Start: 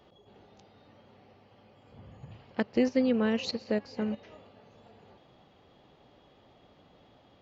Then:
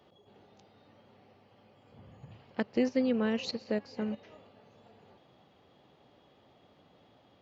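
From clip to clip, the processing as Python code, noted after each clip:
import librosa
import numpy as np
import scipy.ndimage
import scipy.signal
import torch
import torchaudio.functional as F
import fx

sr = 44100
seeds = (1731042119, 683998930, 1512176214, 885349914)

y = scipy.signal.sosfilt(scipy.signal.butter(2, 80.0, 'highpass', fs=sr, output='sos'), x)
y = y * 10.0 ** (-2.5 / 20.0)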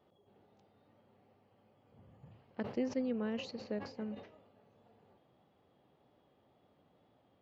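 y = fx.high_shelf(x, sr, hz=2300.0, db=-9.0)
y = fx.wow_flutter(y, sr, seeds[0], rate_hz=2.1, depth_cents=27.0)
y = fx.sustainer(y, sr, db_per_s=110.0)
y = y * 10.0 ** (-7.0 / 20.0)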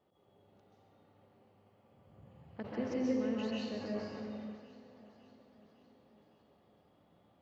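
y = fx.echo_feedback(x, sr, ms=556, feedback_pct=59, wet_db=-19)
y = fx.rev_plate(y, sr, seeds[1], rt60_s=1.4, hf_ratio=0.8, predelay_ms=120, drr_db=-5.0)
y = y * 10.0 ** (-4.5 / 20.0)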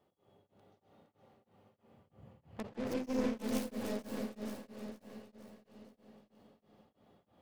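y = fx.tracing_dist(x, sr, depth_ms=0.44)
y = fx.echo_feedback(y, sr, ms=464, feedback_pct=46, wet_db=-5.5)
y = y * np.abs(np.cos(np.pi * 3.1 * np.arange(len(y)) / sr))
y = y * 10.0 ** (1.5 / 20.0)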